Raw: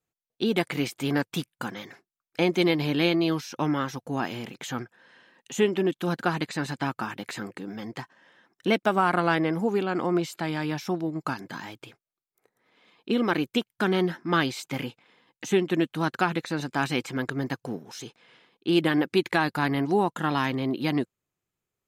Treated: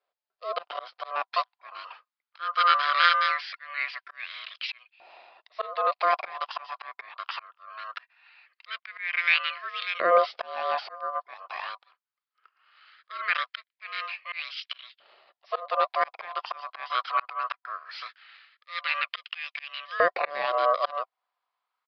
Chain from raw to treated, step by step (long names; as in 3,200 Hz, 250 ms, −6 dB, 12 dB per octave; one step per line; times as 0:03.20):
low-shelf EQ 79 Hz −10.5 dB
ring modulation 870 Hz
volume swells 387 ms
auto-filter high-pass saw up 0.2 Hz 570–2,900 Hz
downsampling to 11,025 Hz
level +5 dB